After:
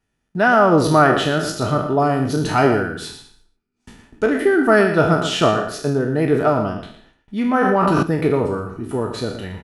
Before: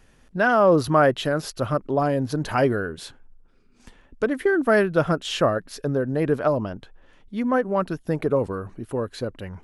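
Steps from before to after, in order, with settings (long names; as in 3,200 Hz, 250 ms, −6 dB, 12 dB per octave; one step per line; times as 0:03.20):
peak hold with a decay on every bin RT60 0.59 s
noise gate with hold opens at −40 dBFS
notch comb filter 540 Hz
slap from a distant wall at 20 metres, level −10 dB
0:07.61–0:08.03: envelope flattener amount 100%
level +4.5 dB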